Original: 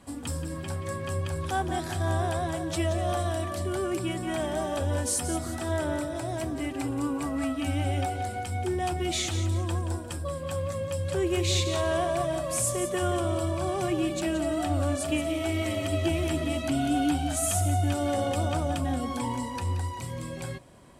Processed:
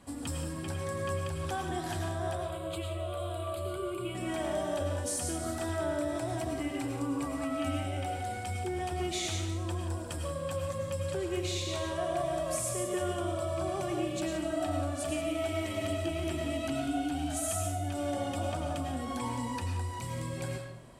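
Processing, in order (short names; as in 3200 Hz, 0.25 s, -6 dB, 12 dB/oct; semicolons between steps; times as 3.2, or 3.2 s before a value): compressor, threshold -29 dBFS, peak gain reduction 8 dB; 2.35–4.15 fixed phaser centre 1200 Hz, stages 8; reverb RT60 0.55 s, pre-delay 65 ms, DRR 2.5 dB; gain -2.5 dB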